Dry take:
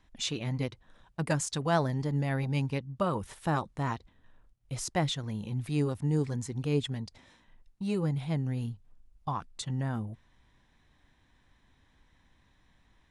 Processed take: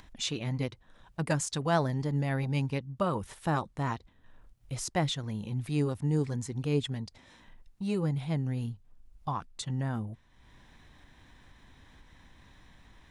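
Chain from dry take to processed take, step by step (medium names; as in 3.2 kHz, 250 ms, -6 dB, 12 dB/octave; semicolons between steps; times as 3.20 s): upward compressor, threshold -45 dBFS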